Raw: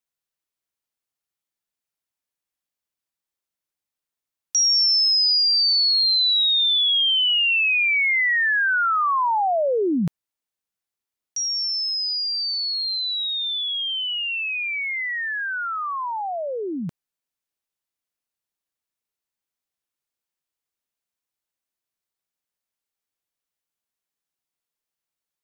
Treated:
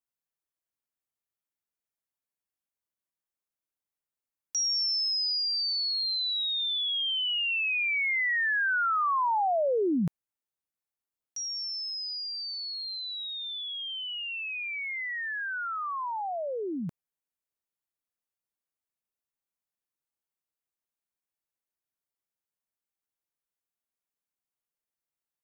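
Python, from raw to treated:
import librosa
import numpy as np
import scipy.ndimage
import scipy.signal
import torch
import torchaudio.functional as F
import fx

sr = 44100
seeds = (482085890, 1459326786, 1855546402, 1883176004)

y = fx.peak_eq(x, sr, hz=4100.0, db=-6.0, octaves=1.7)
y = y * 10.0 ** (-5.0 / 20.0)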